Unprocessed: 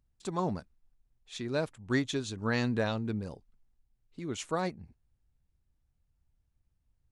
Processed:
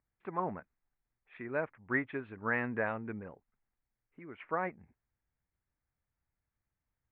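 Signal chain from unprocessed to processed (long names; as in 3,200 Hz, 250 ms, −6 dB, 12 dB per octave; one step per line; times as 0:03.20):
Butterworth low-pass 2,200 Hz 48 dB per octave
spectral tilt +3.5 dB per octave
0:03.30–0:04.40: downward compressor 1.5 to 1, threshold −55 dBFS, peak gain reduction 7 dB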